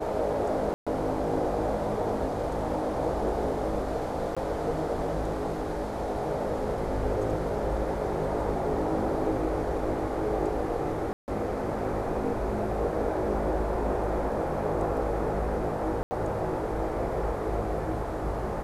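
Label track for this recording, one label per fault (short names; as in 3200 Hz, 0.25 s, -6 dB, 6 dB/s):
0.740000	0.870000	gap 0.126 s
4.350000	4.370000	gap 16 ms
11.130000	11.280000	gap 0.149 s
16.030000	16.110000	gap 80 ms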